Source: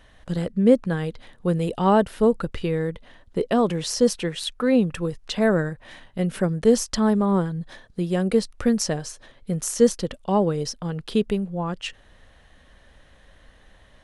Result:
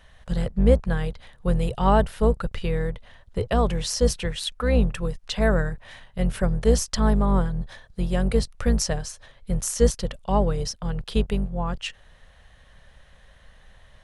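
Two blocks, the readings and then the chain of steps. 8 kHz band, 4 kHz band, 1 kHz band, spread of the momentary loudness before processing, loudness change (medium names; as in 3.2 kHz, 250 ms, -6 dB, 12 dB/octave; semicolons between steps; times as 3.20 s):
0.0 dB, 0.0 dB, -0.5 dB, 12 LU, -1.5 dB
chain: octave divider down 2 oct, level +1 dB; peaking EQ 300 Hz -13 dB 0.69 oct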